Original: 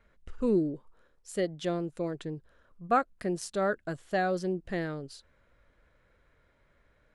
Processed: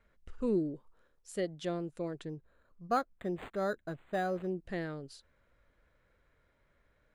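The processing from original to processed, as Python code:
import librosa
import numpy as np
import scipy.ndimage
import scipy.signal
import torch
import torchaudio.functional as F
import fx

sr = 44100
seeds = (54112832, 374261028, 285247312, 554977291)

y = fx.resample_linear(x, sr, factor=8, at=(2.29, 4.5))
y = y * librosa.db_to_amplitude(-4.5)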